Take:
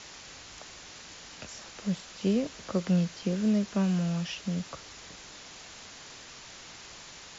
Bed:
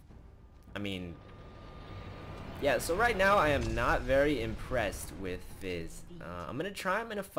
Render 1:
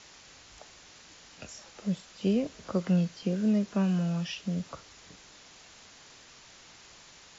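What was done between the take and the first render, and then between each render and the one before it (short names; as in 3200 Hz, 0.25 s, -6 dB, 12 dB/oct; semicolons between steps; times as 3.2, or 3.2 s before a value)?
noise print and reduce 6 dB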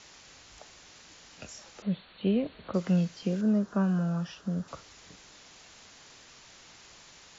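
1.82–2.74 brick-wall FIR low-pass 4500 Hz; 3.41–4.68 resonant high shelf 1800 Hz -6.5 dB, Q 3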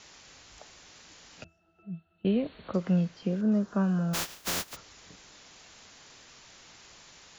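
1.44–2.25 octave resonator E, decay 0.17 s; 2.76–3.52 LPF 2700 Hz 6 dB/oct; 4.13–4.75 spectral contrast lowered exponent 0.16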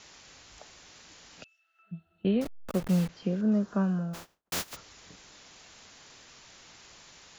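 1.42–1.91 resonant high-pass 3000 Hz -> 1400 Hz, resonance Q 2; 2.41–3.09 level-crossing sampler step -34 dBFS; 3.71–4.52 studio fade out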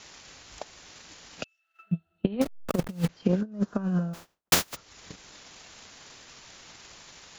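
negative-ratio compressor -29 dBFS, ratio -0.5; transient shaper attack +11 dB, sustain -7 dB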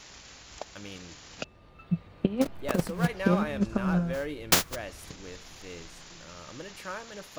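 add bed -6.5 dB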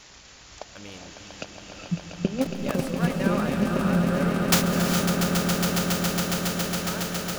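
on a send: swelling echo 0.138 s, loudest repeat 8, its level -8.5 dB; on the sum: non-linear reverb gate 0.47 s rising, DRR 6 dB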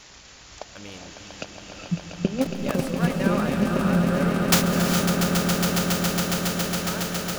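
gain +1.5 dB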